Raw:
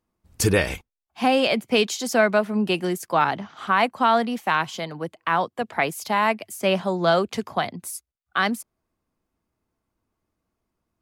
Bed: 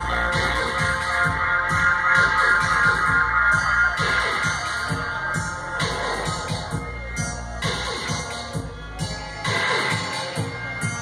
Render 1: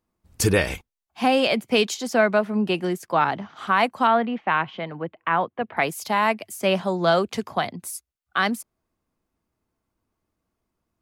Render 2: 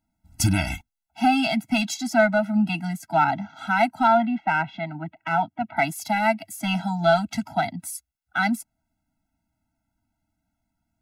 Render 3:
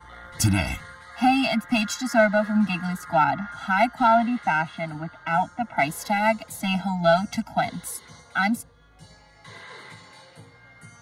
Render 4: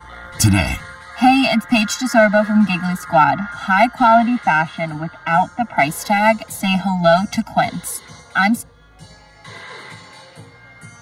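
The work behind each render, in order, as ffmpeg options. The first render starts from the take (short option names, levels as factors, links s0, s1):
-filter_complex "[0:a]asettb=1/sr,asplit=3[s0][s1][s2];[s0]atrim=end=1.944[s3];[s1]atrim=start=1.94:end=3.56,asetpts=PTS-STARTPTS,afade=t=in:d=0.004:c=qsin,afade=t=out:st=1.616:d=0.004:c=qsin,highshelf=f=4900:g=-8[s4];[s2]atrim=start=3.556[s5];[s3][s4]acrossfade=d=0.004:c1=hsin:c2=qsin[s6];[s6][s5]acrossfade=d=0.004:c1=qsin:c2=hsin,asettb=1/sr,asplit=3[s7][s8][s9];[s7]atrim=end=4.074[s10];[s8]atrim=start=4.07:end=5.77,asetpts=PTS-STARTPTS,afade=t=in:d=0.004:c=qsin,afade=t=out:st=1.696:d=0.004:c=qsin,lowpass=f=2900:w=0.5412,lowpass=f=2900:w=1.3066[s11];[s9]atrim=start=5.766[s12];[s10][s11]acrossfade=d=0.004:c1=hsin:c2=qsin[s13];[s13][s12]acrossfade=d=0.004:c1=qsin:c2=hsin"
-filter_complex "[0:a]asplit=2[s0][s1];[s1]asoftclip=type=hard:threshold=0.133,volume=0.355[s2];[s0][s2]amix=inputs=2:normalize=0,afftfilt=real='re*eq(mod(floor(b*sr/1024/320),2),0)':imag='im*eq(mod(floor(b*sr/1024/320),2),0)':win_size=1024:overlap=0.75"
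-filter_complex "[1:a]volume=0.0891[s0];[0:a][s0]amix=inputs=2:normalize=0"
-af "volume=2.37,alimiter=limit=0.794:level=0:latency=1"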